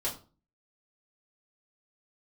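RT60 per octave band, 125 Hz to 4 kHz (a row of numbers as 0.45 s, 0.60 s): 0.55 s, 0.50 s, 0.40 s, 0.35 s, 0.30 s, 0.30 s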